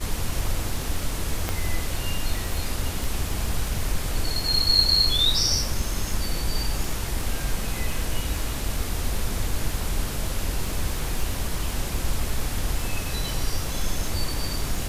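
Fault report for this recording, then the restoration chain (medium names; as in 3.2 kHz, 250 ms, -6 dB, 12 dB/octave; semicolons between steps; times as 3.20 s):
crackle 39 per s -31 dBFS
1.49 s: pop -10 dBFS
3.04 s: pop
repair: de-click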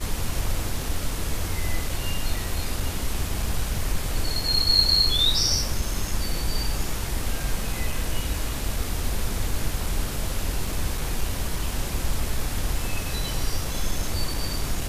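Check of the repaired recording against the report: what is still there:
1.49 s: pop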